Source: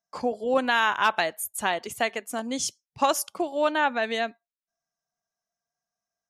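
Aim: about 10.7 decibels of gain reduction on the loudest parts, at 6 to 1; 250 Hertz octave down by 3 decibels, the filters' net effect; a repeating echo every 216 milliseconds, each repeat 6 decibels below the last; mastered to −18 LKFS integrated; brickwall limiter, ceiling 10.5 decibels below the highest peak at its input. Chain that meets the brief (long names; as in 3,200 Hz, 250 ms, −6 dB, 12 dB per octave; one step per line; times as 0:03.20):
parametric band 250 Hz −3.5 dB
downward compressor 6 to 1, threshold −29 dBFS
brickwall limiter −26.5 dBFS
repeating echo 216 ms, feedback 50%, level −6 dB
level +18 dB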